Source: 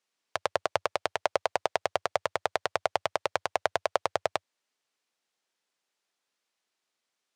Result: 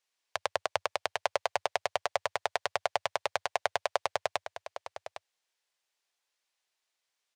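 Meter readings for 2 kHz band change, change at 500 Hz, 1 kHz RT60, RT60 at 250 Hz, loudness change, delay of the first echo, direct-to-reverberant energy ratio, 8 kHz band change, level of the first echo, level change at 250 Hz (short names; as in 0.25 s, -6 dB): -1.0 dB, -3.5 dB, none, none, -2.5 dB, 0.807 s, none, 0.0 dB, -11.5 dB, -9.0 dB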